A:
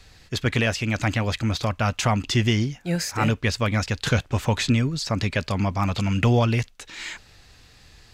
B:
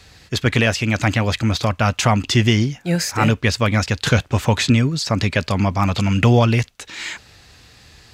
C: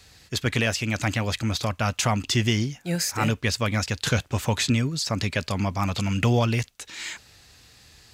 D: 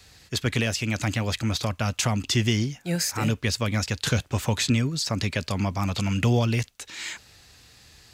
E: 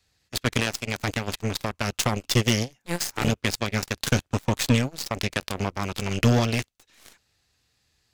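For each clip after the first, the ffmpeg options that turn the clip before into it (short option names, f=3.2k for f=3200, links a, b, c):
-af "highpass=56,volume=5.5dB"
-af "highshelf=f=5.6k:g=9,volume=-7.5dB"
-filter_complex "[0:a]acrossover=split=490|3000[a][b][c];[b]acompressor=threshold=-29dB:ratio=6[d];[a][d][c]amix=inputs=3:normalize=0"
-af "aeval=exprs='0.316*(cos(1*acos(clip(val(0)/0.316,-1,1)))-cos(1*PI/2))+0.0251*(cos(4*acos(clip(val(0)/0.316,-1,1)))-cos(4*PI/2))+0.0501*(cos(7*acos(clip(val(0)/0.316,-1,1)))-cos(7*PI/2))':c=same,volume=2dB"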